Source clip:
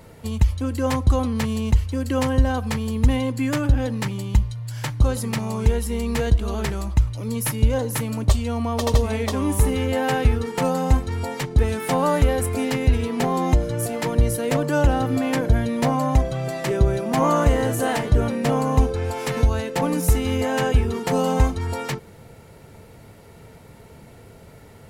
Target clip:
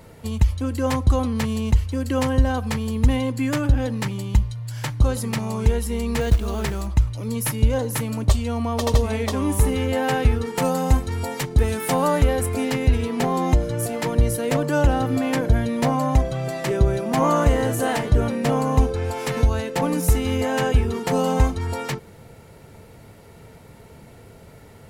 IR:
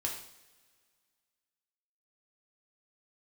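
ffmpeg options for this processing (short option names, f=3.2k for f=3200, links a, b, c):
-filter_complex "[0:a]asettb=1/sr,asplit=3[a][b][c];[a]atrim=end=6.214[d];[b]atrim=start=6.21:end=6.87,asetpts=PTS-STARTPTS,afade=t=in:d=0.004:c=qsin,afade=t=out:st=0.656:d=0.004:c=qsin,acrusher=bits=6:mode=log:mix=0:aa=0.000001[e];[c]atrim=start=6.866[f];[d][e]acrossfade=d=0.004:c1=hsin:c2=qsin[g];[g][f]acrossfade=d=0.004:c1=qsin:c2=hsin,asettb=1/sr,asplit=3[h][i][j];[h]atrim=end=10.564[k];[i]atrim=start=10.56:end=12.08,asetpts=PTS-STARTPTS,afade=t=in:d=0.004:c=qsin,afade=t=out:st=1.516:d=0.004:c=qsin,highshelf=f=7.7k:g=7.5[l];[j]atrim=start=12.076[m];[k][l]acrossfade=d=0.004:c1=hsin:c2=qsin[n];[n][m]acrossfade=d=0.004:c1=qsin:c2=hsin"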